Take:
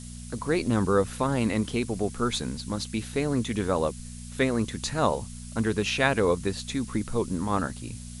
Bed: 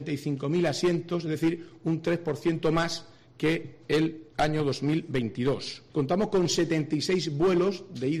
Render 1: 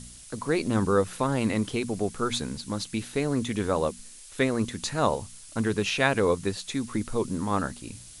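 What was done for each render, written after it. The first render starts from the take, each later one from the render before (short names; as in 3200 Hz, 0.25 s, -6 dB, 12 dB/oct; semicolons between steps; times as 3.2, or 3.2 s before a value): de-hum 60 Hz, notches 4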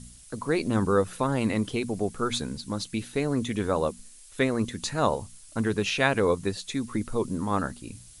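denoiser 6 dB, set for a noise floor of -47 dBFS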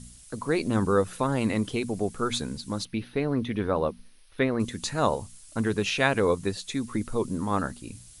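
2.85–4.6 running mean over 6 samples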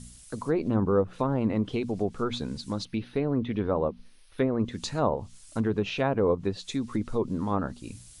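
treble ducked by the level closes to 1300 Hz, closed at -20 dBFS; dynamic EQ 1800 Hz, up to -7 dB, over -46 dBFS, Q 1.3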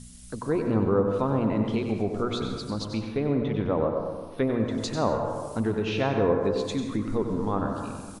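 echo 95 ms -8.5 dB; plate-style reverb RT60 1.5 s, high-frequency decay 0.35×, pre-delay 0.115 s, DRR 5 dB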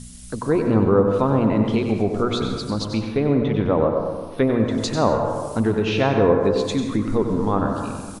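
gain +6.5 dB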